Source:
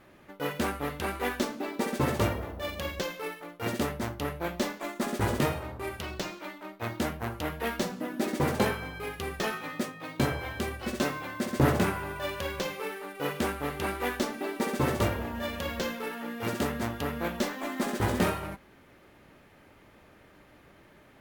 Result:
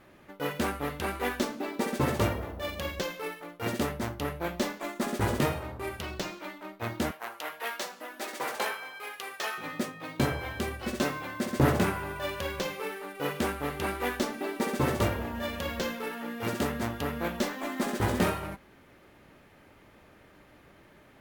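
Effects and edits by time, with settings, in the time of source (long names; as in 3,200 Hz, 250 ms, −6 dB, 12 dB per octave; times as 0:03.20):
0:07.11–0:09.58: high-pass filter 710 Hz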